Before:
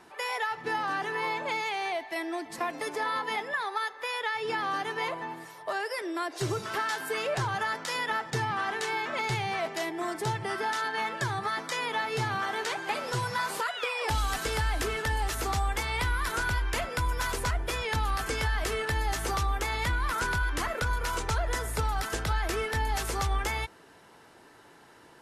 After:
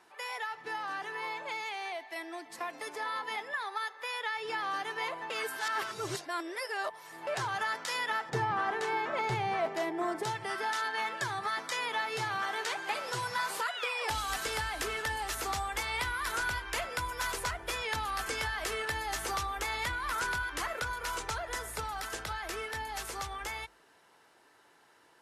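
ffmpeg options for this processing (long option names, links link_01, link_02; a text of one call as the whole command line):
ffmpeg -i in.wav -filter_complex "[0:a]asettb=1/sr,asplit=3[link_01][link_02][link_03];[link_01]atrim=end=8.294[link_04];[link_02]atrim=start=8.29:end=10.23,asetpts=PTS-STARTPTS,afade=type=in:duration=0.004:curve=qsin,afade=type=out:start_time=1.936:duration=0.004:curve=qsin,tiltshelf=frequency=1500:gain=7.5[link_05];[link_03]atrim=start=10.226[link_06];[link_04][link_05]acrossfade=duration=0.004:curve1=hsin:curve2=qsin[link_07];[link_07][link_06]acrossfade=duration=0.004:curve1=qsin:curve2=hsin,asplit=3[link_08][link_09][link_10];[link_08]atrim=end=5.302[link_11];[link_09]atrim=start=5.298:end=7.272,asetpts=PTS-STARTPTS,areverse[link_12];[link_10]atrim=start=7.268[link_13];[link_11][link_12]acrossfade=duration=0.004:curve1=hsin:curve2=hsin[link_14];[link_14][link_13]acrossfade=duration=0.004:curve1=hsin:curve2=hsin,lowshelf=frequency=350:gain=-10.5,dynaudnorm=framelen=470:gausssize=17:maxgain=4dB,bandreject=frequency=50:width_type=h:width=6,bandreject=frequency=100:width_type=h:width=6,bandreject=frequency=150:width_type=h:width=6,bandreject=frequency=200:width_type=h:width=6,bandreject=frequency=250:width_type=h:width=6,volume=-5.5dB" out.wav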